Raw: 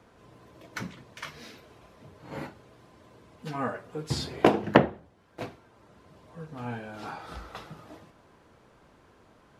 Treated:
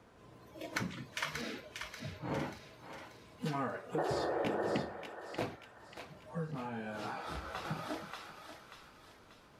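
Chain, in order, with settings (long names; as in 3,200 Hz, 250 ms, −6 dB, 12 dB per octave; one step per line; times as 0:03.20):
noise reduction from a noise print of the clip's start 11 dB
0:01.41–0:02.47: high-shelf EQ 3,300 Hz −10.5 dB
0:04.01–0:04.76: healed spectral selection 310–1,900 Hz after
downward compressor 6 to 1, threshold −42 dBFS, peak gain reduction 24 dB
feedback echo with a high-pass in the loop 586 ms, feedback 50%, high-pass 1,200 Hz, level −5 dB
0:06.51–0:07.65: micro pitch shift up and down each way 13 cents
level +8 dB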